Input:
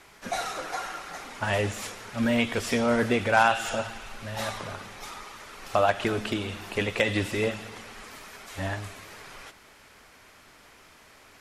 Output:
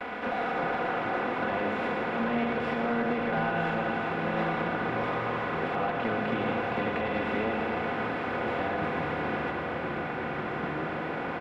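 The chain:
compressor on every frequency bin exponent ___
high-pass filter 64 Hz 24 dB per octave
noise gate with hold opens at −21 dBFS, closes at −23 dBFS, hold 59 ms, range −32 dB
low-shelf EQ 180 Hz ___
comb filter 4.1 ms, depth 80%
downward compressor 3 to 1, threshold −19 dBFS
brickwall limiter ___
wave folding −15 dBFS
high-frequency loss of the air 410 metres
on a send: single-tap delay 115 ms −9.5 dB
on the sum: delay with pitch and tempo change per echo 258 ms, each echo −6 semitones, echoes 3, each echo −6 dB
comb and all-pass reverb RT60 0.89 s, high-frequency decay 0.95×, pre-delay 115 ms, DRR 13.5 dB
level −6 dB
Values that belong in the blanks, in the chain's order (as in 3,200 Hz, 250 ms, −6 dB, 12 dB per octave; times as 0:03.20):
0.4, −5.5 dB, −11.5 dBFS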